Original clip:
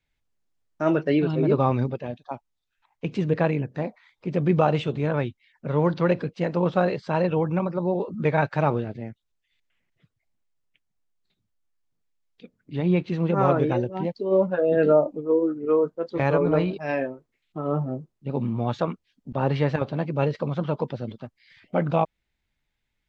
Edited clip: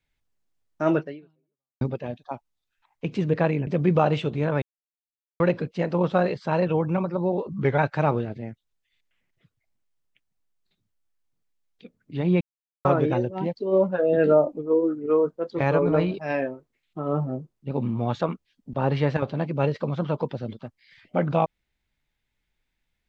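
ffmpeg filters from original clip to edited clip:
-filter_complex "[0:a]asplit=9[a][b][c][d][e][f][g][h][i];[a]atrim=end=1.81,asetpts=PTS-STARTPTS,afade=t=out:st=0.99:d=0.82:c=exp[j];[b]atrim=start=1.81:end=3.672,asetpts=PTS-STARTPTS,afade=t=in:d=0.004:c=hsin[k];[c]atrim=start=4.288:end=5.24,asetpts=PTS-STARTPTS,afade=t=out:st=0.948:d=0.004:c=hsin[l];[d]atrim=start=5.24:end=6.02,asetpts=PTS-STARTPTS,volume=0[m];[e]atrim=start=6.02:end=8.114,asetpts=PTS-STARTPTS,afade=t=in:d=0.004:c=hsin[n];[f]atrim=start=8.11:end=8.37,asetpts=PTS-STARTPTS,asetrate=39690,aresample=44100[o];[g]atrim=start=8.366:end=13,asetpts=PTS-STARTPTS,afade=t=out:st=4.63:d=0.004:c=hsin[p];[h]atrim=start=13:end=13.44,asetpts=PTS-STARTPTS,volume=0[q];[i]atrim=start=13.44,asetpts=PTS-STARTPTS,afade=t=in:d=0.004:c=hsin[r];[j][k]concat=n=2:v=0:a=1[s];[l][m][n]concat=n=3:v=0:a=1[t];[s][t]acrossfade=d=0.004:c1=hsin:c2=hsin[u];[u][o]acrossfade=d=0.004:c1=hsin:c2=hsin[v];[p][q][r]concat=n=3:v=0:a=1[w];[v][w]acrossfade=d=0.004:c1=hsin:c2=hsin"

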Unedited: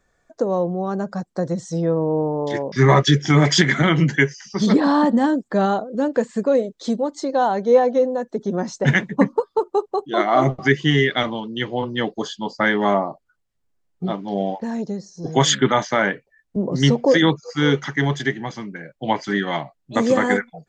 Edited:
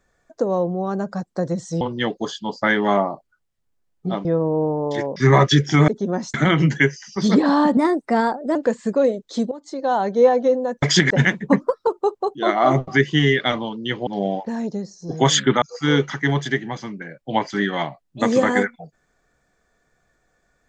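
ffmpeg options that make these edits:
-filter_complex "[0:a]asplit=14[a][b][c][d][e][f][g][h][i][j][k][l][m][n];[a]atrim=end=1.812[o];[b]atrim=start=11.778:end=14.222[p];[c]atrim=start=1.808:end=3.442[q];[d]atrim=start=8.328:end=8.792[r];[e]atrim=start=3.718:end=5.154[s];[f]atrim=start=5.15:end=6.06,asetpts=PTS-STARTPTS,asetrate=51156,aresample=44100[t];[g]atrim=start=6.056:end=7.02,asetpts=PTS-STARTPTS,afade=t=out:st=0.96:d=0.004:c=hsin:silence=0.16788[u];[h]atrim=start=7.02:end=8.332,asetpts=PTS-STARTPTS,afade=t=in:d=0.51:silence=0.16788[v];[i]atrim=start=3.438:end=3.722[w];[j]atrim=start=8.788:end=9.304[x];[k]atrim=start=9.3:end=9.58,asetpts=PTS-STARTPTS,asetrate=48510,aresample=44100,atrim=end_sample=11225,asetpts=PTS-STARTPTS[y];[l]atrim=start=9.576:end=11.782[z];[m]atrim=start=14.218:end=15.772[aa];[n]atrim=start=17.358[ab];[o][p]acrossfade=d=0.004:c1=hsin:c2=hsin[ac];[ac][q]acrossfade=d=0.004:c1=hsin:c2=hsin[ad];[ad][r]acrossfade=d=0.004:c1=hsin:c2=hsin[ae];[ae][s]acrossfade=d=0.004:c1=hsin:c2=hsin[af];[af][t]acrossfade=d=0.004:c1=hsin:c2=hsin[ag];[u][v]concat=n=2:v=0:a=1[ah];[ag][ah]acrossfade=d=0.004:c1=hsin:c2=hsin[ai];[ai][w]acrossfade=d=0.004:c1=hsin:c2=hsin[aj];[aj][x]acrossfade=d=0.004:c1=hsin:c2=hsin[ak];[ak][y]acrossfade=d=0.004:c1=hsin:c2=hsin[al];[al][z]acrossfade=d=0.004:c1=hsin:c2=hsin[am];[am][aa]acrossfade=d=0.004:c1=hsin:c2=hsin[an];[an][ab]acrossfade=d=0.004:c1=hsin:c2=hsin"

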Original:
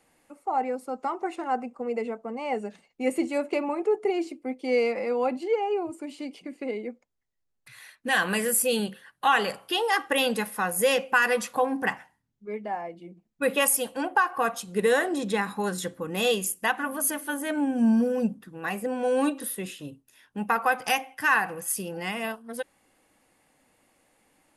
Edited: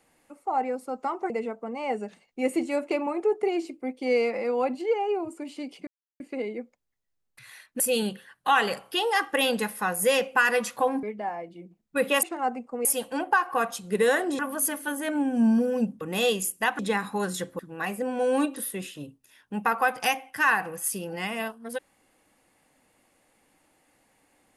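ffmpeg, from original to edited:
-filter_complex "[0:a]asplit=11[a][b][c][d][e][f][g][h][i][j][k];[a]atrim=end=1.302[l];[b]atrim=start=1.918:end=6.49,asetpts=PTS-STARTPTS,afade=t=out:st=4.568:d=0.004:c=hsin,apad=pad_dur=0.33[m];[c]atrim=start=6.49:end=8.092,asetpts=PTS-STARTPTS,afade=t=in:d=0.004:c=hsin[n];[d]atrim=start=8.568:end=11.802[o];[e]atrim=start=12.488:end=13.692[p];[f]atrim=start=1.298:end=1.922[q];[g]atrim=start=13.688:end=15.232[r];[h]atrim=start=16.808:end=18.432[s];[i]atrim=start=16.028:end=16.812[t];[j]atrim=start=15.228:end=16.032[u];[k]atrim=start=18.428[v];[m][n]concat=n=2:v=0:a=1[w];[l][w]acrossfade=d=0.004:c1=hsin:c2=hsin[x];[x][o]acrossfade=d=0.004:c1=hsin:c2=hsin[y];[y][p]acrossfade=d=0.004:c1=hsin:c2=hsin[z];[z][q]acrossfade=d=0.004:c1=hsin:c2=hsin[aa];[aa][r]acrossfade=d=0.004:c1=hsin:c2=hsin[ab];[ab][s]acrossfade=d=0.004:c1=hsin:c2=hsin[ac];[ac][t]acrossfade=d=0.004:c1=hsin:c2=hsin[ad];[ad][u]acrossfade=d=0.004:c1=hsin:c2=hsin[ae];[ae][v]acrossfade=d=0.004:c1=hsin:c2=hsin"

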